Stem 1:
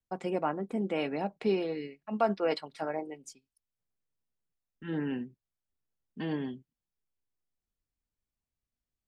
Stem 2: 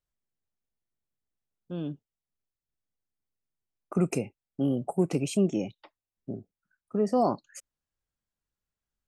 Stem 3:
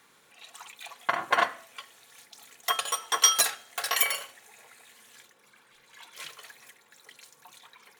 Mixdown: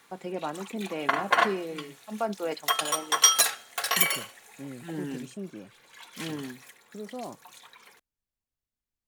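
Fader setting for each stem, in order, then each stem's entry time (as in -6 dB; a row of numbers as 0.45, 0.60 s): -2.5, -14.0, +1.5 dB; 0.00, 0.00, 0.00 s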